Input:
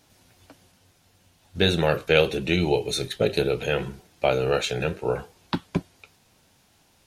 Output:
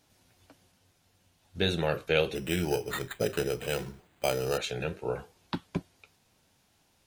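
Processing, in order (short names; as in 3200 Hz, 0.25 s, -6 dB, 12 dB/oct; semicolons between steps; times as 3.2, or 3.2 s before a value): 2.35–4.58 careless resampling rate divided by 8×, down none, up hold; gain -7 dB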